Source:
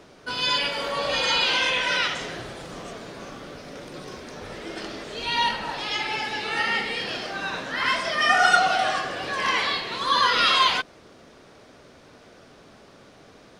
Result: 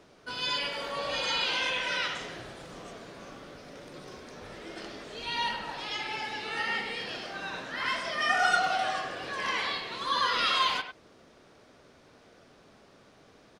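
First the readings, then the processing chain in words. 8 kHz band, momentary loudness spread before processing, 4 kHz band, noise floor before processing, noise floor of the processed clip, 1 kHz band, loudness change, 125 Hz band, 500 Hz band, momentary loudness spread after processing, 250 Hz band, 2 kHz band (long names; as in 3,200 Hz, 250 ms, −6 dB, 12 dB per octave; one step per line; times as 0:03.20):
−7.5 dB, 20 LU, −7.0 dB, −51 dBFS, −58 dBFS, −7.0 dB, −7.0 dB, −7.5 dB, −7.0 dB, 20 LU, −7.5 dB, −7.0 dB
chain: far-end echo of a speakerphone 100 ms, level −9 dB
level −7.5 dB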